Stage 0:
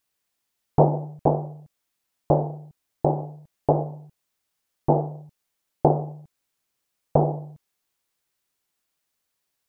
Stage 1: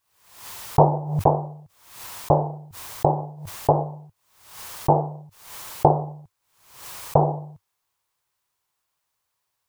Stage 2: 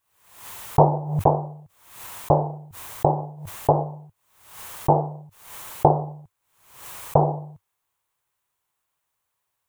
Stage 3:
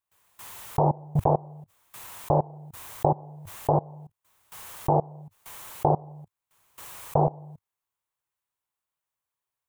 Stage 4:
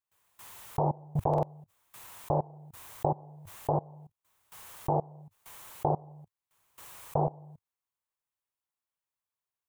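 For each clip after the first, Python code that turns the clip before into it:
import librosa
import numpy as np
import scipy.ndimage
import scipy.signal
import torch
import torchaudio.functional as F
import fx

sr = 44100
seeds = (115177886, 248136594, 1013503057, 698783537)

y1 = fx.graphic_eq_15(x, sr, hz=(100, 250, 1000), db=(7, -7, 9))
y1 = fx.pre_swell(y1, sr, db_per_s=84.0)
y2 = fx.peak_eq(y1, sr, hz=4900.0, db=-7.0, octaves=0.64)
y3 = fx.level_steps(y2, sr, step_db=23)
y3 = y3 * 10.0 ** (3.0 / 20.0)
y4 = fx.buffer_glitch(y3, sr, at_s=(1.29,), block=2048, repeats=2)
y4 = y4 * 10.0 ** (-6.0 / 20.0)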